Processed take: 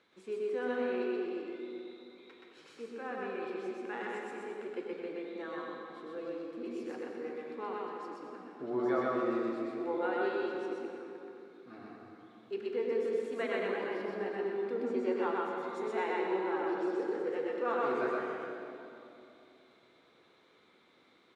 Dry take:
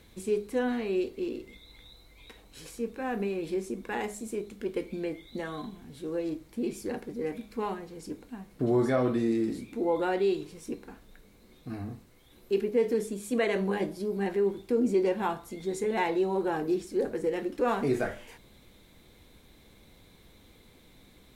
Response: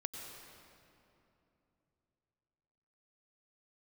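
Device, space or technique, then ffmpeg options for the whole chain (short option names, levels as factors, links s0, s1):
station announcement: -filter_complex "[0:a]highpass=330,lowpass=4100,equalizer=f=1300:t=o:w=0.51:g=8,aecho=1:1:125.4|215.7:0.891|0.282[s0];[1:a]atrim=start_sample=2205[s1];[s0][s1]afir=irnorm=-1:irlink=0,volume=0.473"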